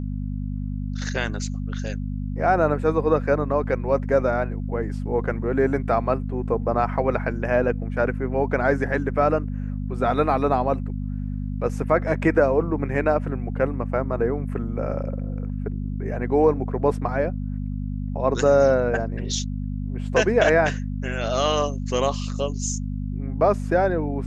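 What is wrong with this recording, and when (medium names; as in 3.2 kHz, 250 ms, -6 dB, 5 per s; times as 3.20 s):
hum 50 Hz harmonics 5 -28 dBFS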